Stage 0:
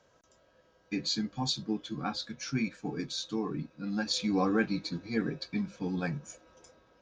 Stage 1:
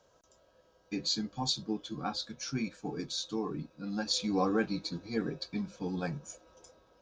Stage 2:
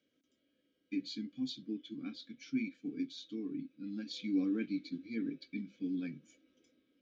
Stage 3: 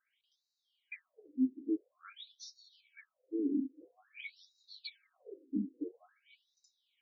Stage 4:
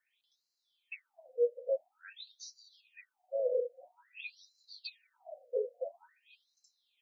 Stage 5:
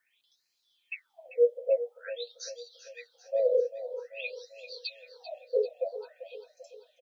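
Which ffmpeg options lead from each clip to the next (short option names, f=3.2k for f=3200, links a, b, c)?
-af "equalizer=f=125:t=o:w=1:g=-4,equalizer=f=250:t=o:w=1:g=-4,equalizer=f=2k:t=o:w=1:g=-8,volume=1.5dB"
-filter_complex "[0:a]asplit=3[a][b][c];[a]bandpass=f=270:t=q:w=8,volume=0dB[d];[b]bandpass=f=2.29k:t=q:w=8,volume=-6dB[e];[c]bandpass=f=3.01k:t=q:w=8,volume=-9dB[f];[d][e][f]amix=inputs=3:normalize=0,volume=5.5dB"
-af "afftfilt=real='re*between(b*sr/1024,300*pow(5300/300,0.5+0.5*sin(2*PI*0.49*pts/sr))/1.41,300*pow(5300/300,0.5+0.5*sin(2*PI*0.49*pts/sr))*1.41)':imag='im*between(b*sr/1024,300*pow(5300/300,0.5+0.5*sin(2*PI*0.49*pts/sr))/1.41,300*pow(5300/300,0.5+0.5*sin(2*PI*0.49*pts/sr))*1.41)':win_size=1024:overlap=0.75,volume=8dB"
-af "afreqshift=220,volume=1.5dB"
-af "aecho=1:1:392|784|1176|1568|1960:0.224|0.119|0.0629|0.0333|0.0177,volume=6.5dB"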